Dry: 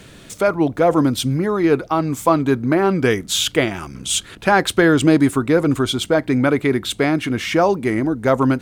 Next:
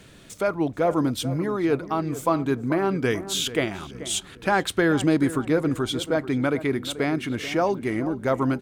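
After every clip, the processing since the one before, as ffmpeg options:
ffmpeg -i in.wav -filter_complex "[0:a]asplit=2[link_01][link_02];[link_02]adelay=435,lowpass=frequency=1600:poles=1,volume=-13.5dB,asplit=2[link_03][link_04];[link_04]adelay=435,lowpass=frequency=1600:poles=1,volume=0.44,asplit=2[link_05][link_06];[link_06]adelay=435,lowpass=frequency=1600:poles=1,volume=0.44,asplit=2[link_07][link_08];[link_08]adelay=435,lowpass=frequency=1600:poles=1,volume=0.44[link_09];[link_01][link_03][link_05][link_07][link_09]amix=inputs=5:normalize=0,volume=-7dB" out.wav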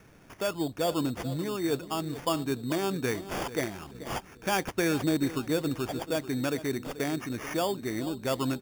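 ffmpeg -i in.wav -af "acrusher=samples=11:mix=1:aa=0.000001,volume=-6.5dB" out.wav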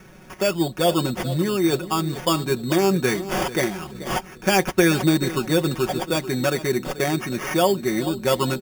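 ffmpeg -i in.wav -af "aecho=1:1:5.4:0.72,volume=7.5dB" out.wav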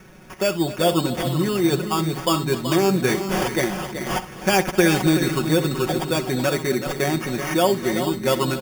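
ffmpeg -i in.wav -af "aecho=1:1:63|256|378|436:0.168|0.168|0.335|0.188" out.wav

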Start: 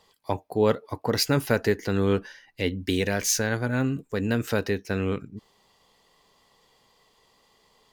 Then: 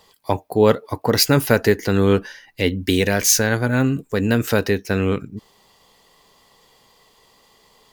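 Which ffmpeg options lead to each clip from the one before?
ffmpeg -i in.wav -af "highshelf=frequency=12000:gain=8.5,volume=7dB" out.wav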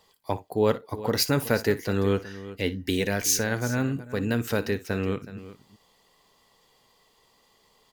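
ffmpeg -i in.wav -af "aecho=1:1:59|371:0.141|0.168,volume=-8dB" out.wav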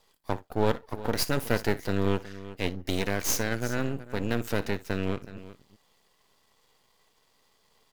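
ffmpeg -i in.wav -af "aeval=exprs='max(val(0),0)':channel_layout=same" out.wav

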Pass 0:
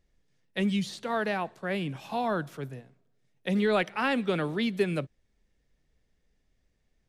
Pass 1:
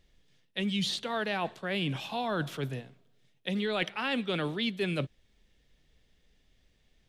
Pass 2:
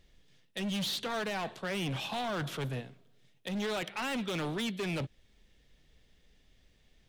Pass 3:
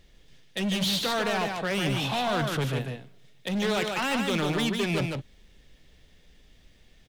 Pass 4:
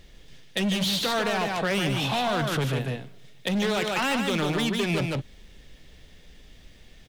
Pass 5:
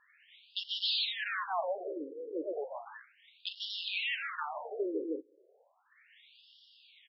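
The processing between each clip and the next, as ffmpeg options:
ffmpeg -i in.wav -af "equalizer=frequency=3300:width=1.6:gain=9.5,areverse,acompressor=threshold=-33dB:ratio=6,areverse,volume=4.5dB" out.wav
ffmpeg -i in.wav -af "alimiter=limit=-23dB:level=0:latency=1:release=174,volume=34dB,asoftclip=hard,volume=-34dB,volume=2.5dB" out.wav
ffmpeg -i in.wav -af "aecho=1:1:149:0.596,volume=6.5dB" out.wav
ffmpeg -i in.wav -af "acompressor=threshold=-31dB:ratio=3,volume=6.5dB" out.wav
ffmpeg -i in.wav -af "asoftclip=type=hard:threshold=-26.5dB,afftfilt=real='re*between(b*sr/1024,370*pow(4000/370,0.5+0.5*sin(2*PI*0.34*pts/sr))/1.41,370*pow(4000/370,0.5+0.5*sin(2*PI*0.34*pts/sr))*1.41)':imag='im*between(b*sr/1024,370*pow(4000/370,0.5+0.5*sin(2*PI*0.34*pts/sr))/1.41,370*pow(4000/370,0.5+0.5*sin(2*PI*0.34*pts/sr))*1.41)':win_size=1024:overlap=0.75" out.wav

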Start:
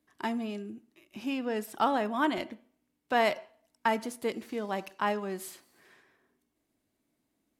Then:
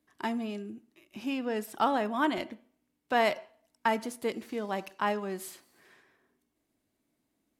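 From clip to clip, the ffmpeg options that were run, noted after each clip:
ffmpeg -i in.wav -af anull out.wav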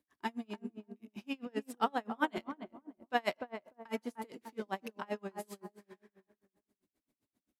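ffmpeg -i in.wav -filter_complex "[0:a]bandreject=frequency=660:width=19,asplit=2[link_01][link_02];[link_02]adelay=298,lowpass=frequency=830:poles=1,volume=-5dB,asplit=2[link_03][link_04];[link_04]adelay=298,lowpass=frequency=830:poles=1,volume=0.38,asplit=2[link_05][link_06];[link_06]adelay=298,lowpass=frequency=830:poles=1,volume=0.38,asplit=2[link_07][link_08];[link_08]adelay=298,lowpass=frequency=830:poles=1,volume=0.38,asplit=2[link_09][link_10];[link_10]adelay=298,lowpass=frequency=830:poles=1,volume=0.38[link_11];[link_01][link_03][link_05][link_07][link_09][link_11]amix=inputs=6:normalize=0,aeval=exprs='val(0)*pow(10,-34*(0.5-0.5*cos(2*PI*7.6*n/s))/20)':channel_layout=same,volume=-1.5dB" out.wav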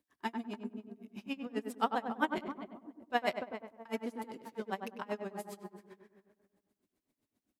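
ffmpeg -i in.wav -filter_complex "[0:a]asplit=2[link_01][link_02];[link_02]adelay=99,lowpass=frequency=1400:poles=1,volume=-5.5dB,asplit=2[link_03][link_04];[link_04]adelay=99,lowpass=frequency=1400:poles=1,volume=0.23,asplit=2[link_05][link_06];[link_06]adelay=99,lowpass=frequency=1400:poles=1,volume=0.23[link_07];[link_01][link_03][link_05][link_07]amix=inputs=4:normalize=0" out.wav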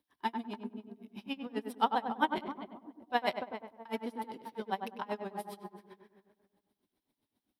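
ffmpeg -i in.wav -af "superequalizer=9b=1.78:13b=1.78:15b=0.316" out.wav

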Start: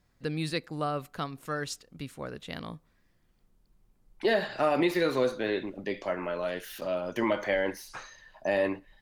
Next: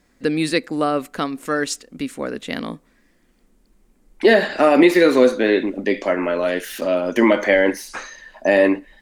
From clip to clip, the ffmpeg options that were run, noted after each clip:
ffmpeg -i in.wav -af "equalizer=frequency=125:width_type=o:width=1:gain=-11,equalizer=frequency=250:width_type=o:width=1:gain=11,equalizer=frequency=500:width_type=o:width=1:gain=4,equalizer=frequency=2000:width_type=o:width=1:gain=6,equalizer=frequency=8000:width_type=o:width=1:gain=7,volume=7dB" out.wav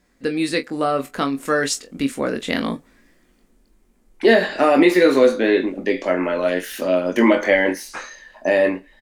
ffmpeg -i in.wav -filter_complex "[0:a]dynaudnorm=framelen=120:gausssize=17:maxgain=8dB,asplit=2[link_01][link_02];[link_02]aecho=0:1:22|43:0.473|0.158[link_03];[link_01][link_03]amix=inputs=2:normalize=0,volume=-3dB" out.wav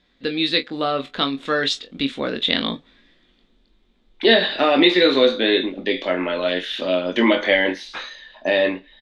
ffmpeg -i in.wav -af "lowpass=frequency=3600:width_type=q:width=7.5,volume=-2.5dB" out.wav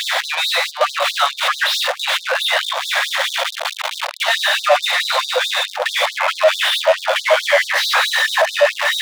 ffmpeg -i in.wav -filter_complex "[0:a]aeval=exprs='val(0)+0.5*0.1*sgn(val(0))':channel_layout=same,asplit=2[link_01][link_02];[link_02]highpass=frequency=720:poles=1,volume=34dB,asoftclip=type=tanh:threshold=-0.5dB[link_03];[link_01][link_03]amix=inputs=2:normalize=0,lowpass=frequency=1000:poles=1,volume=-6dB,afftfilt=real='re*gte(b*sr/1024,480*pow(3600/480,0.5+0.5*sin(2*PI*4.6*pts/sr)))':imag='im*gte(b*sr/1024,480*pow(3600/480,0.5+0.5*sin(2*PI*4.6*pts/sr)))':win_size=1024:overlap=0.75" out.wav

